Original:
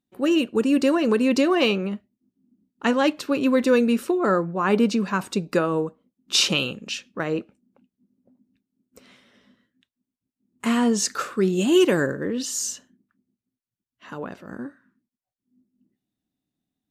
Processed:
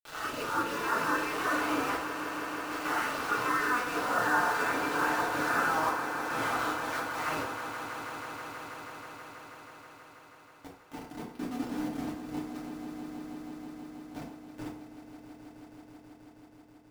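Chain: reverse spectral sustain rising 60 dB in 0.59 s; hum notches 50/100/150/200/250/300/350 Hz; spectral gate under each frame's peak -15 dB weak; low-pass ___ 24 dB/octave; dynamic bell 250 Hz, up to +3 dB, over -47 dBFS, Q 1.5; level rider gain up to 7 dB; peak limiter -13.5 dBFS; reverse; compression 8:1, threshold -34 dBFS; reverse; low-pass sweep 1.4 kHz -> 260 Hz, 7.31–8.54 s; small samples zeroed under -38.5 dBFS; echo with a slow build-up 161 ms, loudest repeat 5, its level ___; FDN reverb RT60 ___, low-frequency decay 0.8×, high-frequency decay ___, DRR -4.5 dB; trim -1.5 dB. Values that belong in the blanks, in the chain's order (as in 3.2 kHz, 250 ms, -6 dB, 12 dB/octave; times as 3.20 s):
5 kHz, -13 dB, 0.59 s, 0.65×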